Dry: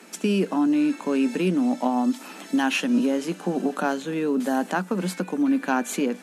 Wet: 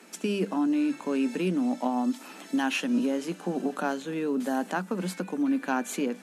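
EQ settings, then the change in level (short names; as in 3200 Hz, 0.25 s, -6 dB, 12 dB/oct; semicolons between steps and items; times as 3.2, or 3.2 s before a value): notches 50/100/150/200 Hz; -4.5 dB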